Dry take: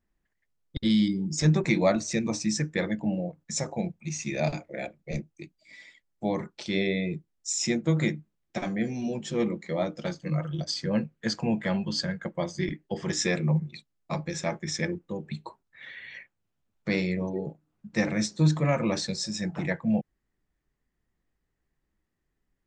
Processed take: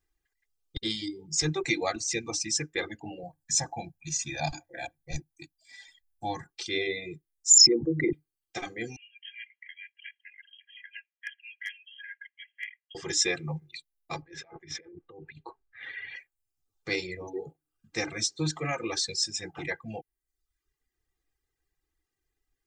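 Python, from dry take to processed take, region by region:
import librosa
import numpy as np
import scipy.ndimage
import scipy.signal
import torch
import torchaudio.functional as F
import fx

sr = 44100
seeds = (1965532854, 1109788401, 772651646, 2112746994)

y = fx.chain(x, sr, fx.peak_eq(hz=2600.0, db=-8.0, octaves=0.55),
    fx.comb(ms=1.2, depth=0.94), at=(3.23, 6.52))
y = fx.chain(y, sr, fx.envelope_sharpen(power=3.0),
    fx.env_flatten(amount_pct=100), at=(7.5, 8.13))
y = fx.chain(y, sr, fx.brickwall_bandpass(low_hz=1600.0, high_hz=3300.0),
    fx.clip_hard(threshold_db=-24.5), at=(8.96, 12.95))
y = fx.chain(y, sr, fx.lowpass(hz=2200.0, slope=12),
    fx.over_compress(threshold_db=-41.0, ratio=-1.0), at=(14.22, 16.16))
y = y + 0.88 * np.pad(y, (int(2.5 * sr / 1000.0), 0))[:len(y)]
y = fx.dereverb_blind(y, sr, rt60_s=0.75)
y = fx.high_shelf(y, sr, hz=2100.0, db=10.0)
y = y * librosa.db_to_amplitude(-6.5)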